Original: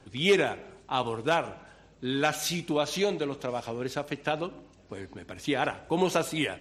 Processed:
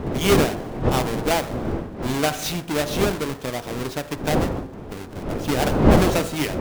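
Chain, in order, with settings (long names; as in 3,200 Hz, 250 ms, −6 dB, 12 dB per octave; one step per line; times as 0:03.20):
each half-wave held at its own peak
wind on the microphone 410 Hz −24 dBFS
hum removal 53.75 Hz, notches 36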